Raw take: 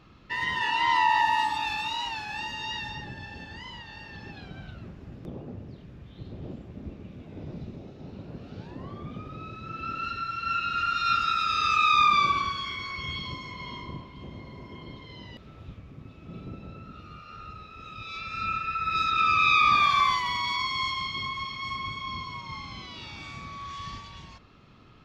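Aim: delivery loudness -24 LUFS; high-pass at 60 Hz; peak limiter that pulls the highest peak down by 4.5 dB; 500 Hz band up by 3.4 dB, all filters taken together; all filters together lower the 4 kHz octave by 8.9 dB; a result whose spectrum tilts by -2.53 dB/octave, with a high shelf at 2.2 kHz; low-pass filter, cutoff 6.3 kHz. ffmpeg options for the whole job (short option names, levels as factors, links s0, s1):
-af "highpass=60,lowpass=6300,equalizer=f=500:t=o:g=5,highshelf=f=2200:g=-7,equalizer=f=4000:t=o:g=-4.5,volume=2.24,alimiter=limit=0.266:level=0:latency=1"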